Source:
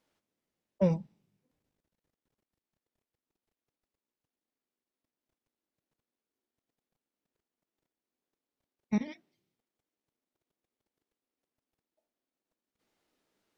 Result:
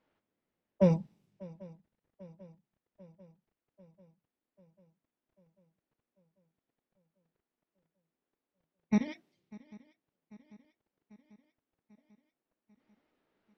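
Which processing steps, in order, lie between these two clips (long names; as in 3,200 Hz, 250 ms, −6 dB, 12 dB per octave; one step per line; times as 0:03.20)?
low-pass that shuts in the quiet parts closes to 2,500 Hz
feedback echo with a long and a short gap by turns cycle 793 ms, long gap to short 3 to 1, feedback 60%, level −22.5 dB
level +2 dB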